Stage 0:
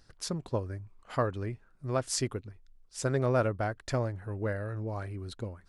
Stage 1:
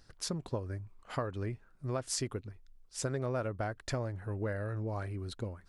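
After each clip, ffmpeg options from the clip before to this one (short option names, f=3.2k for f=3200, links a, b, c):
-af "acompressor=threshold=-31dB:ratio=5"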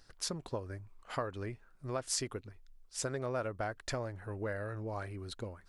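-af "equalizer=f=120:w=0.39:g=-6.5,volume=1dB"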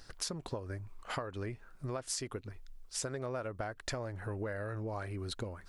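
-af "acompressor=threshold=-44dB:ratio=4,volume=7.5dB"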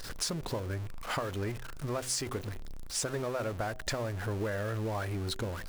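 -af "aeval=exprs='val(0)+0.5*0.01*sgn(val(0))':c=same,bandreject=f=127.1:t=h:w=4,bandreject=f=254.2:t=h:w=4,bandreject=f=381.3:t=h:w=4,bandreject=f=508.4:t=h:w=4,bandreject=f=635.5:t=h:w=4,bandreject=f=762.6:t=h:w=4,volume=2.5dB"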